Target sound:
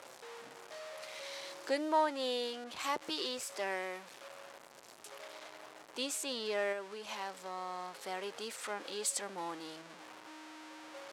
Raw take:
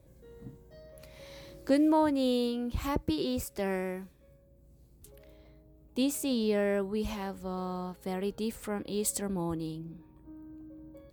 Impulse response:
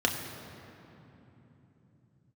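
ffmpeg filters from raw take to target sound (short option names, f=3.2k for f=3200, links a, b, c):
-filter_complex "[0:a]aeval=exprs='val(0)+0.5*0.0112*sgn(val(0))':c=same,asettb=1/sr,asplit=3[a][b][c];[a]atrim=end=6.724[d];[b]atrim=start=6.72:end=7.93,asetpts=PTS-STARTPTS,afade=t=in:d=0.004:c=qsin,afade=t=out:st=1.206:d=0.004:c=qsin,acompressor=threshold=-31dB:ratio=6[e];[c]atrim=start=7.926[f];[d][e]acrossfade=d=0.004:c1=hsin:c2=qsin[g];[g][f]acrossfade=d=0.004:c1=qsin:c2=hsin,highpass=700,lowpass=7.9k,asettb=1/sr,asplit=3[h][i][j];[h]atrim=end=2.644[k];[i]atrim=start=2.64:end=3.38,asetpts=PTS-STARTPTS,afade=t=in:d=0.004:c=qsin,afade=t=out:st=0.736:d=0.004:c=qsin,adynamicequalizer=threshold=0.00501:dfrequency=2300:dqfactor=0.7:tfrequency=2300:tqfactor=0.7:attack=5:release=100:ratio=0.375:range=1.5:mode=boostabove:tftype=highshelf[l];[j]atrim=start=3.376[m];[k][l]acrossfade=d=0.004:c1=hsin:c2=qsin[n];[n][m]acrossfade=d=0.004:c1=qsin:c2=hsin"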